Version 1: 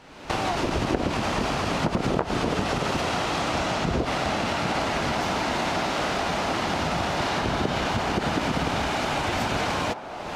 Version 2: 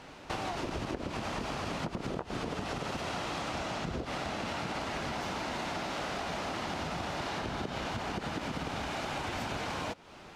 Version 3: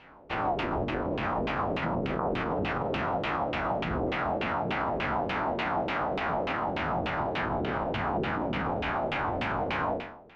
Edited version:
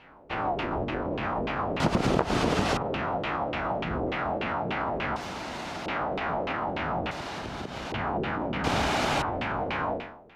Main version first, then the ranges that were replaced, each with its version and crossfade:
3
0:01.80–0:02.77: punch in from 1
0:05.16–0:05.86: punch in from 2
0:07.11–0:07.92: punch in from 2
0:08.64–0:09.22: punch in from 1

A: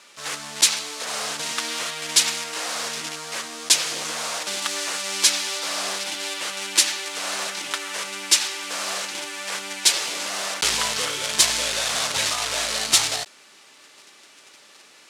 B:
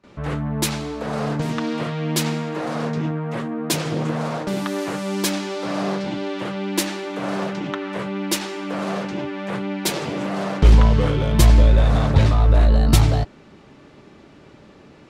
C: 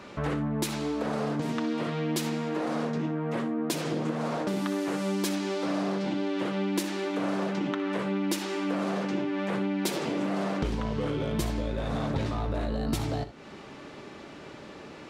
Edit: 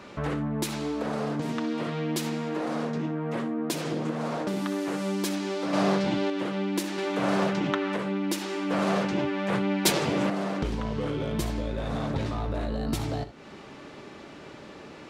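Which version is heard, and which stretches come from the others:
C
0:05.73–0:06.30: punch in from B
0:06.98–0:07.96: punch in from B
0:08.71–0:10.30: punch in from B
not used: A

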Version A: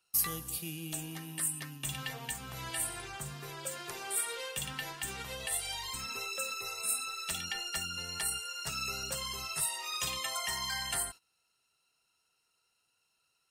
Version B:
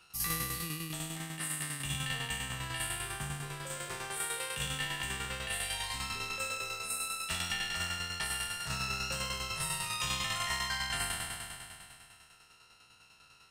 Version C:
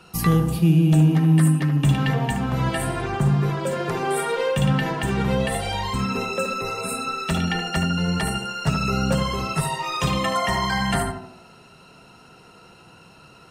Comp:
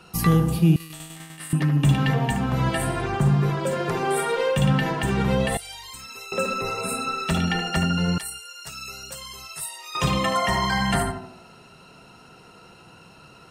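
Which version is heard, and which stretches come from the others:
C
0:00.76–0:01.53: punch in from B
0:05.57–0:06.32: punch in from A
0:08.18–0:09.95: punch in from A

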